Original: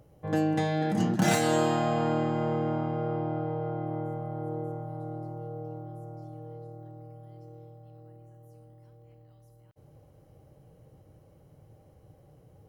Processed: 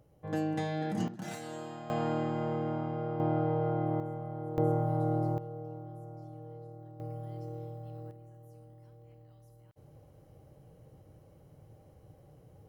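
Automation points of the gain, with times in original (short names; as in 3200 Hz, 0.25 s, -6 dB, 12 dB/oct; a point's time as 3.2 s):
-6 dB
from 1.08 s -17 dB
from 1.9 s -4.5 dB
from 3.2 s +2 dB
from 4 s -4 dB
from 4.58 s +7.5 dB
from 5.38 s -3.5 dB
from 7 s +6.5 dB
from 8.11 s -0.5 dB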